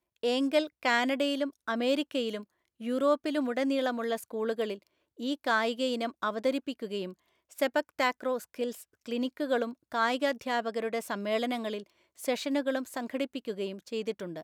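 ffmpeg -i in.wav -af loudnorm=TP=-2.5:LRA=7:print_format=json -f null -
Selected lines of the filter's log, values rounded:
"input_i" : "-31.6",
"input_tp" : "-12.6",
"input_lra" : "4.2",
"input_thresh" : "-41.9",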